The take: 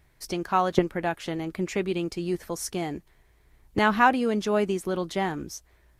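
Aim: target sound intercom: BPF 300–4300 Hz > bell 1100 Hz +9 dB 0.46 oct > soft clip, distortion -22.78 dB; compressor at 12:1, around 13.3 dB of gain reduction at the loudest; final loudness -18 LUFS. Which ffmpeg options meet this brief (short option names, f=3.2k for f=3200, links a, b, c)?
-af "acompressor=threshold=-28dB:ratio=12,highpass=300,lowpass=4.3k,equalizer=f=1.1k:t=o:w=0.46:g=9,asoftclip=threshold=-17.5dB,volume=17dB"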